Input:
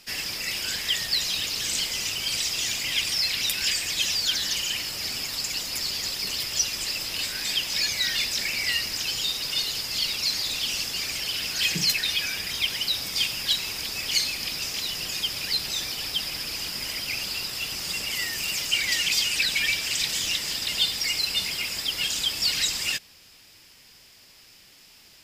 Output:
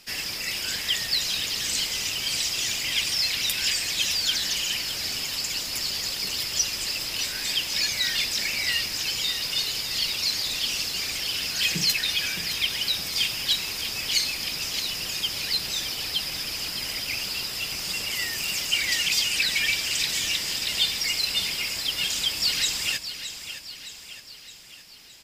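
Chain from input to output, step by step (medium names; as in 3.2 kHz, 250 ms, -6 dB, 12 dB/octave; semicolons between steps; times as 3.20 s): feedback delay 616 ms, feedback 54%, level -11 dB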